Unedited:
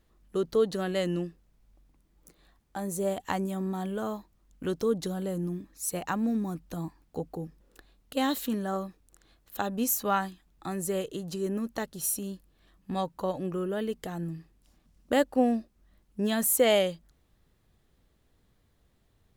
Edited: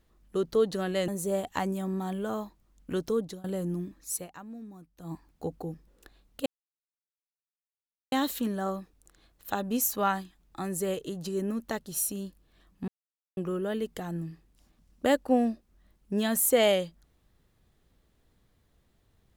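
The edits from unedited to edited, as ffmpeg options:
ffmpeg -i in.wav -filter_complex "[0:a]asplit=8[link_01][link_02][link_03][link_04][link_05][link_06][link_07][link_08];[link_01]atrim=end=1.082[link_09];[link_02]atrim=start=2.808:end=5.17,asetpts=PTS-STARTPTS,afade=type=out:start_time=1.902:duration=0.46:curve=qsin:silence=0.0841395[link_10];[link_03]atrim=start=5.17:end=6.06,asetpts=PTS-STARTPTS,afade=type=in:duration=0.004:curve=hsin:silence=0.0841395,afade=type=out:start_time=0.7:duration=0.19:curve=qua:silence=0.177828[link_11];[link_04]atrim=start=6.06:end=6.68,asetpts=PTS-STARTPTS,volume=-15dB[link_12];[link_05]atrim=start=6.68:end=8.19,asetpts=PTS-STARTPTS,afade=type=in:duration=0.19:curve=qua:silence=0.177828,afade=type=out:start_time=1.506:duration=0.004:curve=hsin,apad=pad_dur=1.66[link_13];[link_06]atrim=start=8.19:end=12.95,asetpts=PTS-STARTPTS,afade=type=in:duration=0.004:curve=hsin,afade=type=out:start_time=4.756:duration=0.004:curve=hsin[link_14];[link_07]atrim=start=12.95:end=13.44,asetpts=PTS-STARTPTS,volume=0[link_15];[link_08]atrim=start=13.44,asetpts=PTS-STARTPTS,afade=type=in:duration=0.004:curve=hsin[link_16];[link_10][link_11][link_12][link_13][link_14][link_15][link_16]concat=n=7:v=0:a=1[link_17];[link_09][link_17]acrossfade=duration=0.004:curve1=hsin:curve2=hsin" out.wav

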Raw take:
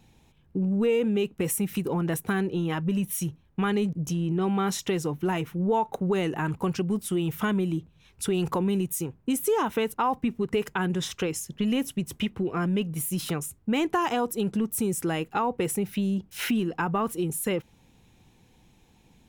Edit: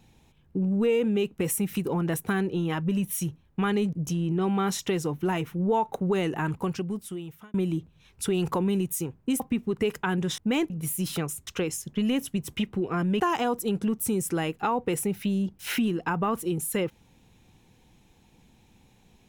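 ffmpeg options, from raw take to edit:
ffmpeg -i in.wav -filter_complex "[0:a]asplit=7[link_01][link_02][link_03][link_04][link_05][link_06][link_07];[link_01]atrim=end=7.54,asetpts=PTS-STARTPTS,afade=type=out:start_time=6.47:duration=1.07[link_08];[link_02]atrim=start=7.54:end=9.402,asetpts=PTS-STARTPTS,afade=type=in:duration=0.004:curve=hsin[link_09];[link_03]atrim=start=10.118:end=11.102[link_10];[link_04]atrim=start=13.598:end=13.922[link_11];[link_05]atrim=start=12.828:end=13.602[link_12];[link_06]atrim=start=11.098:end=12.832[link_13];[link_07]atrim=start=13.918[link_14];[link_08][link_09]concat=n=2:v=0:a=1[link_15];[link_15][link_10]acrossfade=duration=0.004:curve1=hsin:curve2=hsin[link_16];[link_16][link_11]acrossfade=duration=0.004:curve1=hsin:curve2=hsin[link_17];[link_17][link_12]acrossfade=duration=0.004:curve1=hsin:curve2=hsin[link_18];[link_18][link_13]acrossfade=duration=0.004:curve1=hsin:curve2=hsin[link_19];[link_19][link_14]acrossfade=duration=0.004:curve1=hsin:curve2=hsin" out.wav

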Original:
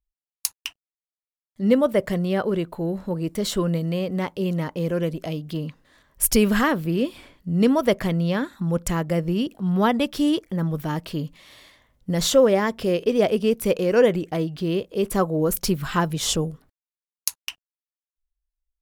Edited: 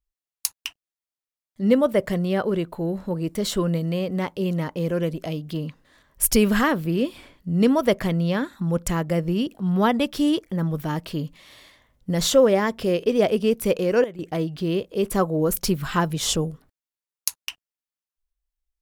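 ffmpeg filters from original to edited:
ffmpeg -i in.wav -filter_complex "[0:a]asplit=3[link_01][link_02][link_03];[link_01]atrim=end=14.04,asetpts=PTS-STARTPTS,afade=type=out:start_time=13.6:duration=0.44:curve=log:silence=0.16788[link_04];[link_02]atrim=start=14.04:end=14.19,asetpts=PTS-STARTPTS,volume=-15.5dB[link_05];[link_03]atrim=start=14.19,asetpts=PTS-STARTPTS,afade=type=in:duration=0.44:curve=log:silence=0.16788[link_06];[link_04][link_05][link_06]concat=n=3:v=0:a=1" out.wav

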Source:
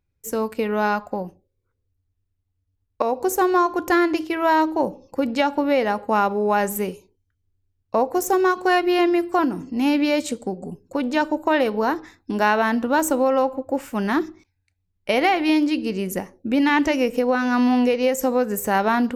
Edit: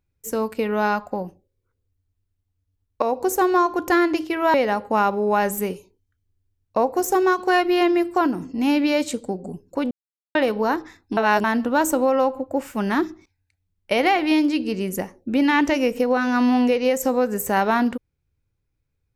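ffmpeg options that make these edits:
ffmpeg -i in.wav -filter_complex "[0:a]asplit=6[link_01][link_02][link_03][link_04][link_05][link_06];[link_01]atrim=end=4.542[link_07];[link_02]atrim=start=5.718:end=11.09,asetpts=PTS-STARTPTS,afade=type=out:start_time=5.368:duration=0.004:curve=hsin[link_08];[link_03]atrim=start=11.09:end=11.53,asetpts=PTS-STARTPTS,volume=0[link_09];[link_04]atrim=start=11.53:end=12.352,asetpts=PTS-STARTPTS,afade=type=in:duration=0.004:curve=hsin[link_10];[link_05]atrim=start=12.348:end=12.622,asetpts=PTS-STARTPTS,areverse[link_11];[link_06]atrim=start=12.618[link_12];[link_08][link_09][link_10]concat=n=3:v=0:a=1[link_13];[link_07][link_13]acrossfade=duration=0.004:curve1=hsin:curve2=hsin[link_14];[link_14][link_11]acrossfade=duration=0.004:curve1=hsin:curve2=hsin[link_15];[link_15][link_12]acrossfade=duration=0.004:curve1=hsin:curve2=hsin" out.wav

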